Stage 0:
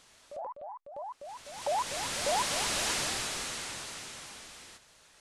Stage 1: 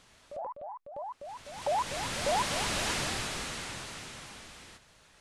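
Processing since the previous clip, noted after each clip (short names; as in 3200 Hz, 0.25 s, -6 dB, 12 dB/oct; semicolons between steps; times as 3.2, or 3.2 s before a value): tone controls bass +6 dB, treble -5 dB; gain +1 dB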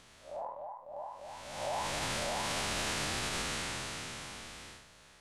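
time blur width 0.125 s; limiter -30.5 dBFS, peak gain reduction 7.5 dB; gain +3.5 dB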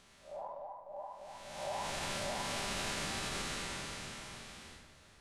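shoebox room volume 3900 m³, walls mixed, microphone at 1.2 m; gain -4.5 dB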